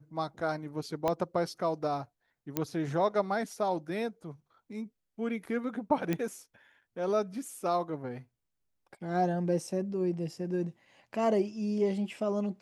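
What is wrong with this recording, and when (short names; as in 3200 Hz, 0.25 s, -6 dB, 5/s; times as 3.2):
1.08 pop -16 dBFS
2.57 pop -14 dBFS
6.13 pop -18 dBFS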